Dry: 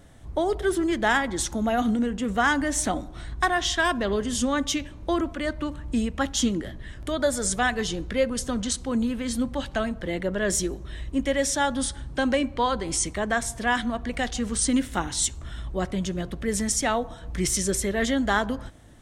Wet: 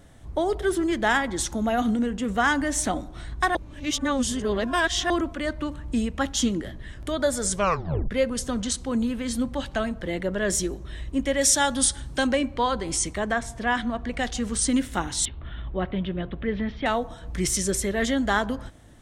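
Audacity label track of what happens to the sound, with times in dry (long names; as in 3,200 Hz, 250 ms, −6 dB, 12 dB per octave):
3.550000	5.100000	reverse
7.520000	7.520000	tape stop 0.59 s
11.410000	12.270000	high-shelf EQ 3,400 Hz +10 dB
13.320000	14.190000	low-pass filter 2,600 Hz → 5,100 Hz 6 dB per octave
15.250000	16.860000	Butterworth low-pass 3,600 Hz 48 dB per octave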